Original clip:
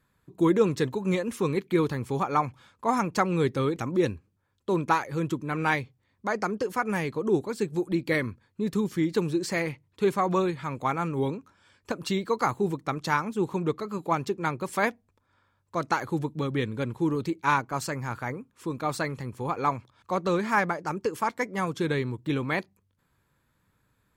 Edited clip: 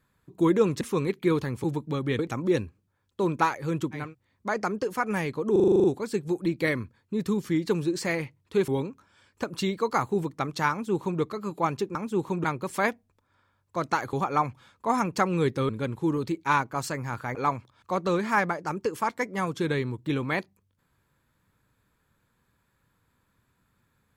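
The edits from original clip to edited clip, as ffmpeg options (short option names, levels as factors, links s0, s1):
-filter_complex "[0:a]asplit=19[s0][s1][s2][s3][s4][s5][s6][s7][s8][s9][s10][s11][s12][s13][s14][s15][s16][s17][s18];[s0]atrim=end=0.812[s19];[s1]atrim=start=1.288:end=2.122[s20];[s2]atrim=start=16.118:end=16.672[s21];[s3]atrim=start=3.678:end=5.64[s22];[s4]atrim=start=5.7:end=7.352[s23];[s5]atrim=start=7.308:end=7.352[s24];[s6]atrim=start=7.308:end=7.352[s25];[s7]atrim=start=7.308:end=7.352[s26];[s8]atrim=start=7.308:end=7.352[s27];[s9]atrim=start=7.308:end=7.352[s28];[s10]atrim=start=7.308:end=7.352[s29];[s11]atrim=start=7.308:end=7.352[s30];[s12]atrim=start=7.308:end=10.152[s31];[s13]atrim=start=11.158:end=14.432[s32];[s14]atrim=start=13.188:end=13.682[s33];[s15]atrim=start=14.428:end=16.122[s34];[s16]atrim=start=2.118:end=3.682[s35];[s17]atrim=start=16.668:end=18.332[s36];[s18]atrim=start=19.548[s37];[s19][s20]acrossfade=d=0.004:c1=hsin:c2=hsin[s38];[s38][s21]acrossfade=d=0.004:c1=hsin:c2=hsin[s39];[s39][s22]acrossfade=d=0.004:c1=hsin:c2=hsin[s40];[s40][s23]acrossfade=d=0.24:c1=tri:c2=tri[s41];[s41][s24]acrossfade=d=0.004:c1=hsin:c2=hsin[s42];[s42][s25]acrossfade=d=0.004:c1=hsin:c2=hsin[s43];[s43][s26]acrossfade=d=0.004:c1=hsin:c2=hsin[s44];[s44][s27]acrossfade=d=0.004:c1=hsin:c2=hsin[s45];[s45][s28]acrossfade=d=0.004:c1=hsin:c2=hsin[s46];[s46][s29]acrossfade=d=0.004:c1=hsin:c2=hsin[s47];[s47][s30]acrossfade=d=0.004:c1=hsin:c2=hsin[s48];[s48][s31]acrossfade=d=0.004:c1=hsin:c2=hsin[s49];[s49][s32]acrossfade=d=0.004:c1=hsin:c2=hsin[s50];[s50][s33]acrossfade=d=0.004:c1=hsin:c2=hsin[s51];[s51][s34]acrossfade=d=0.004:c1=hsin:c2=hsin[s52];[s52][s35]acrossfade=d=0.004:c1=hsin:c2=hsin[s53];[s53][s36]acrossfade=d=0.004:c1=hsin:c2=hsin[s54];[s54][s37]acrossfade=d=0.004:c1=hsin:c2=hsin"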